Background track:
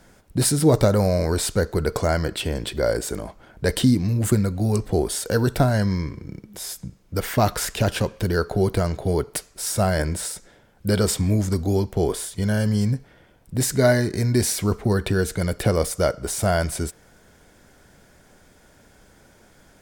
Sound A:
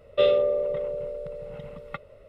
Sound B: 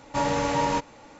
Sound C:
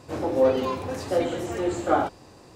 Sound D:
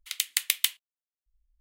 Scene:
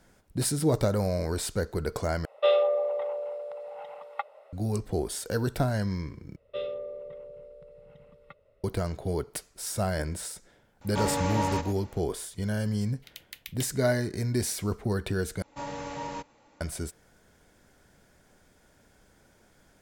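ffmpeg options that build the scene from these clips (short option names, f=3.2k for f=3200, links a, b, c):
-filter_complex "[1:a]asplit=2[a][b];[2:a]asplit=2[c][d];[0:a]volume=-8dB[e];[a]highpass=f=800:t=q:w=7.2[f];[c]aecho=1:1:113:0.266[g];[4:a]equalizer=f=8.6k:w=1.2:g=-12.5[h];[e]asplit=4[i][j][k][l];[i]atrim=end=2.254[m];[f]atrim=end=2.28,asetpts=PTS-STARTPTS,volume=-2.5dB[n];[j]atrim=start=4.526:end=6.364[o];[b]atrim=end=2.28,asetpts=PTS-STARTPTS,volume=-14dB[p];[k]atrim=start=8.636:end=15.424[q];[d]atrim=end=1.19,asetpts=PTS-STARTPTS,volume=-12dB[r];[l]atrim=start=16.606[s];[g]atrim=end=1.19,asetpts=PTS-STARTPTS,volume=-5dB,afade=t=in:d=0.004:c=hsin,afade=t=out:st=1.186:d=0.004:c=hsin,adelay=10810[t];[h]atrim=end=1.6,asetpts=PTS-STARTPTS,volume=-14.5dB,afade=t=in:d=0.004:c=hsin,afade=t=out:st=1.596:d=0.004:c=hsin,adelay=12960[u];[m][n]acrossfade=d=0.004:c1=hsin:c2=hsin[v];[v][o]acrossfade=d=0.004:c1=hsin:c2=hsin[w];[w][p]acrossfade=d=0.004:c1=hsin:c2=hsin[x];[x][q]acrossfade=d=0.004:c1=hsin:c2=hsin[y];[y][r]acrossfade=d=0.004:c1=hsin:c2=hsin[z];[z][s]acrossfade=d=0.004:c1=hsin:c2=hsin[aa];[aa][t][u]amix=inputs=3:normalize=0"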